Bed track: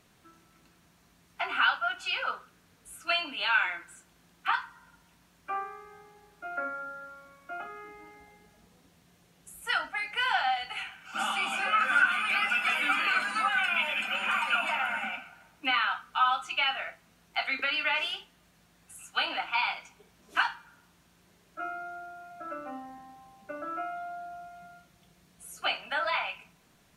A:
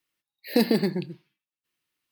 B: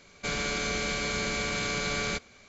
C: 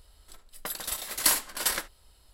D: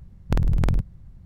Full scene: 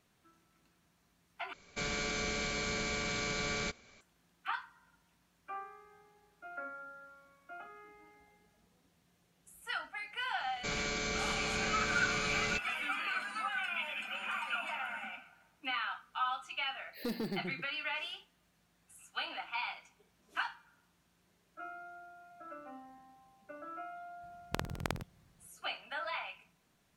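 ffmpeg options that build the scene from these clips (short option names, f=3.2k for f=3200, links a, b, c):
-filter_complex "[2:a]asplit=2[a][b];[0:a]volume=-9.5dB[c];[1:a]asoftclip=type=tanh:threshold=-19.5dB[d];[4:a]highpass=f=970:p=1[e];[c]asplit=2[f][g];[f]atrim=end=1.534[h];[a]atrim=end=2.48,asetpts=PTS-STARTPTS,volume=-5.5dB[i];[g]atrim=start=4.006[j];[b]atrim=end=2.48,asetpts=PTS-STARTPTS,volume=-5.5dB,afade=t=in:d=0.004:c=hsin,afade=t=out:st=2.476:d=0.004:c=hsin,adelay=10400[k];[d]atrim=end=2.11,asetpts=PTS-STARTPTS,volume=-11.5dB,afade=t=in:d=0.004:c=hsin,afade=t=out:st=2.106:d=0.004:c=hsin,adelay=16490[l];[e]atrim=end=1.25,asetpts=PTS-STARTPTS,volume=-0.5dB,afade=t=in:d=0.004:c=hsin,afade=t=out:st=1.246:d=0.004:c=hsin,adelay=24220[m];[h][i]acrossfade=d=0.004:c1=hsin:c2=hsin[n];[n][j]acrossfade=d=0.004:c1=hsin:c2=hsin[o];[o][k][l][m]amix=inputs=4:normalize=0"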